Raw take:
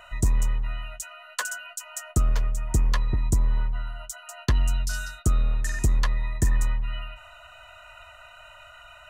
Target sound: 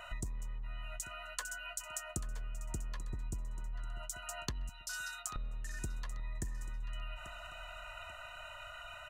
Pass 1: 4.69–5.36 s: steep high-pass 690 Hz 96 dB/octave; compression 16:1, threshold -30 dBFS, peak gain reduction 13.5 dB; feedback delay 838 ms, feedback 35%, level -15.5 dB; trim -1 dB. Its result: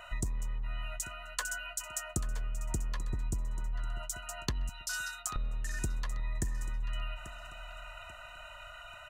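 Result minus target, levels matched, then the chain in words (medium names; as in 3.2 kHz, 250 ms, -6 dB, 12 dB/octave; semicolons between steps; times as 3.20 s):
compression: peak gain reduction -6 dB
4.69–5.36 s: steep high-pass 690 Hz 96 dB/octave; compression 16:1, threshold -36.5 dBFS, peak gain reduction 20 dB; feedback delay 838 ms, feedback 35%, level -15.5 dB; trim -1 dB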